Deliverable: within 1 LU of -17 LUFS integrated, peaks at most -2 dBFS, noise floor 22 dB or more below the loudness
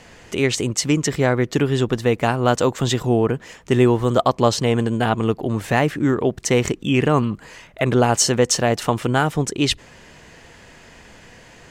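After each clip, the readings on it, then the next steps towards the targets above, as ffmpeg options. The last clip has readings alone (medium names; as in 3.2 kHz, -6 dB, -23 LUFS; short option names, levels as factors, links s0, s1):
loudness -19.5 LUFS; peak level -2.0 dBFS; loudness target -17.0 LUFS
-> -af "volume=1.33,alimiter=limit=0.794:level=0:latency=1"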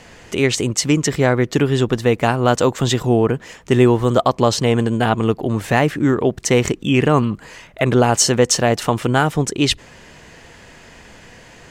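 loudness -17.0 LUFS; peak level -2.0 dBFS; noise floor -44 dBFS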